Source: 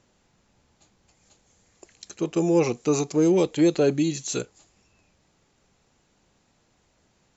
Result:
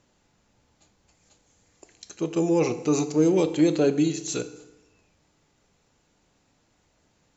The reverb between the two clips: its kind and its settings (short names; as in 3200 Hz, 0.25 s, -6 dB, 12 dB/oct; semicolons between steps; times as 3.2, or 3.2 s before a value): FDN reverb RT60 1 s, low-frequency decay 1×, high-frequency decay 0.75×, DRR 9.5 dB; gain -1.5 dB